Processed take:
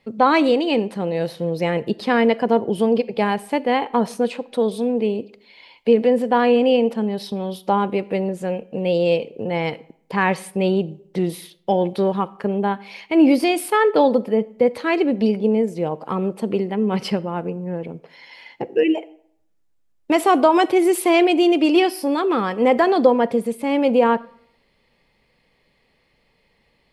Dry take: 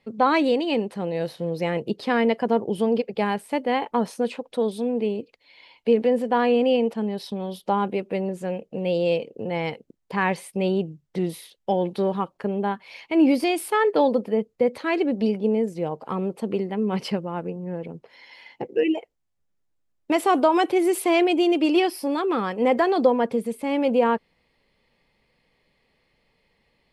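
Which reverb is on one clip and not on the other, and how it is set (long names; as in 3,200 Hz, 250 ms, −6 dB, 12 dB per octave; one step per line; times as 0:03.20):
comb and all-pass reverb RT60 0.66 s, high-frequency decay 0.7×, pre-delay 0 ms, DRR 18.5 dB
level +4 dB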